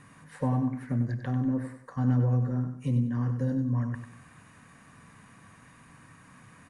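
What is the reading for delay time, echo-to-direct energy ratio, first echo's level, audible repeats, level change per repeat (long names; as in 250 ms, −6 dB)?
96 ms, −8.0 dB, −8.5 dB, 3, −8.5 dB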